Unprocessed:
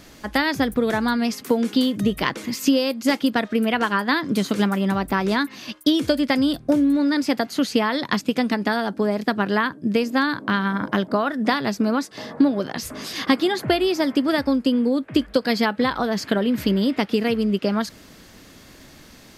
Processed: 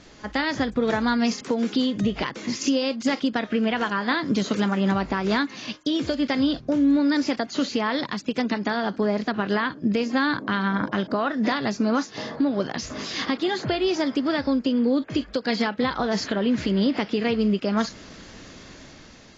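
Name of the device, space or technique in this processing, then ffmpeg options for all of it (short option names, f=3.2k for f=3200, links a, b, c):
low-bitrate web radio: -af "dynaudnorm=f=260:g=7:m=7dB,alimiter=limit=-10.5dB:level=0:latency=1:release=211,volume=-3dB" -ar 16000 -c:a aac -b:a 24k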